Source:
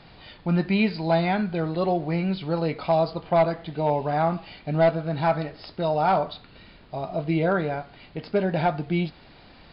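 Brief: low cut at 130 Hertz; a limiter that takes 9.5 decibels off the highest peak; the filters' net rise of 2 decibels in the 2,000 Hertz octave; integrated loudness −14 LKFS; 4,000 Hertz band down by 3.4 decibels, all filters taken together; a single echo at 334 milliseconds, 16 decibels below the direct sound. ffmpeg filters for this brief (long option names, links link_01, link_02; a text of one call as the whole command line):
ffmpeg -i in.wav -af "highpass=130,equalizer=frequency=2000:width_type=o:gain=4,equalizer=frequency=4000:width_type=o:gain=-5.5,alimiter=limit=-19dB:level=0:latency=1,aecho=1:1:334:0.158,volume=15.5dB" out.wav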